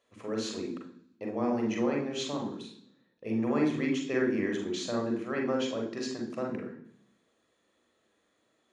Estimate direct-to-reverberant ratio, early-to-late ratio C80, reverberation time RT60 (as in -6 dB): 0.0 dB, 10.0 dB, 0.65 s